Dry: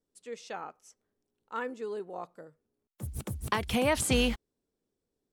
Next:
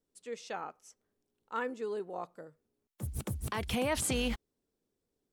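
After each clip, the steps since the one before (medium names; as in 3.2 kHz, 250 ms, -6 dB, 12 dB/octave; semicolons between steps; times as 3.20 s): peak limiter -23 dBFS, peak gain reduction 10.5 dB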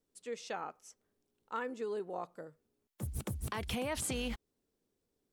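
compression 3:1, threshold -36 dBFS, peak gain reduction 7 dB; trim +1 dB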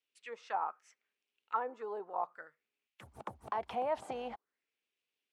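auto-wah 760–2700 Hz, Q 3.8, down, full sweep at -34 dBFS; trim +11 dB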